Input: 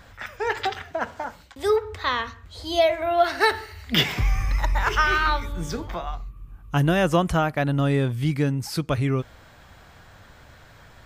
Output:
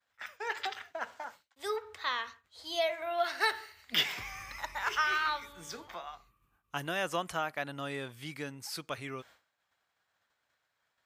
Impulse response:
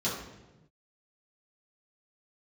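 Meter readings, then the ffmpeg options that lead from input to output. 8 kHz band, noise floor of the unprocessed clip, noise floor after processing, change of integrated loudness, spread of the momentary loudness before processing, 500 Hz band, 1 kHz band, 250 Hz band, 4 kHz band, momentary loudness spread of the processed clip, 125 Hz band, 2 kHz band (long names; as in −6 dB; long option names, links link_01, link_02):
−6.5 dB, −50 dBFS, −81 dBFS, −11.0 dB, 13 LU, −13.5 dB, −10.0 dB, −19.5 dB, −7.0 dB, 15 LU, −24.5 dB, −8.0 dB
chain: -af "agate=range=-33dB:threshold=-36dB:ratio=3:detection=peak,highpass=frequency=1100:poles=1,volume=-6.5dB"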